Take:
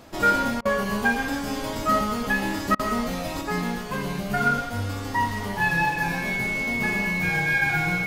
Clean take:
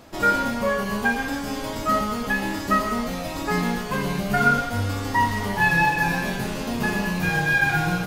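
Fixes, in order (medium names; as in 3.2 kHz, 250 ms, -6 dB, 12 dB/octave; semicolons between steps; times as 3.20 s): clip repair -12 dBFS; band-stop 2.2 kHz, Q 30; interpolate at 0.61/2.75 s, 42 ms; trim 0 dB, from 3.41 s +3.5 dB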